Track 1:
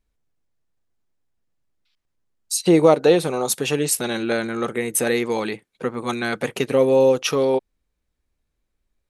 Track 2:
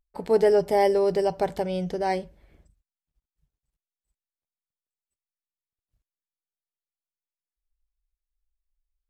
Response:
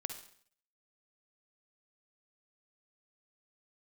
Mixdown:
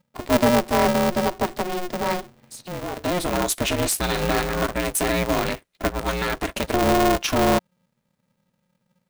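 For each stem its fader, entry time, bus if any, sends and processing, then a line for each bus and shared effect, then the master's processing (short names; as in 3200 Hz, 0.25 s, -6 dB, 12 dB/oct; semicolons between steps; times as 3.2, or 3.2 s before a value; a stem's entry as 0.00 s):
+1.5 dB, 0.00 s, no send, limiter -13.5 dBFS, peak gain reduction 11 dB; auto duck -16 dB, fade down 0.40 s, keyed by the second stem
+1.5 dB, 0.00 s, no send, dry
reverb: off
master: polarity switched at an audio rate 180 Hz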